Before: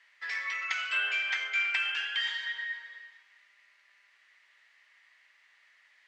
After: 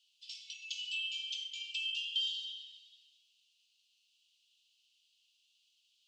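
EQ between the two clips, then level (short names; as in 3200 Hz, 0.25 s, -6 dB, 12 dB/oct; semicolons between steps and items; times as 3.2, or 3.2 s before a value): steep high-pass 2800 Hz 96 dB/oct; 0.0 dB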